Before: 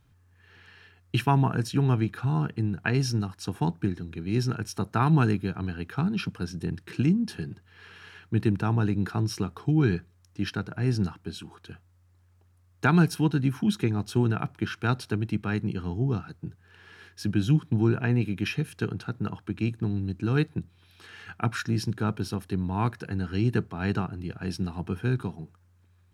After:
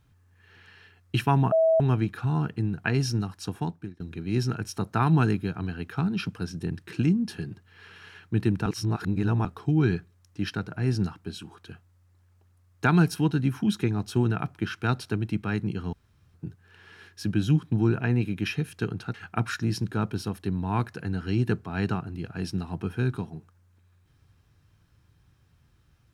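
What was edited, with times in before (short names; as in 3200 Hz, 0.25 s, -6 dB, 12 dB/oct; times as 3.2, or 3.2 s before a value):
1.52–1.8 bleep 648 Hz -17 dBFS
3.44–4 fade out, to -24 dB
8.66–9.45 reverse
15.93–16.34 room tone
19.14–21.2 cut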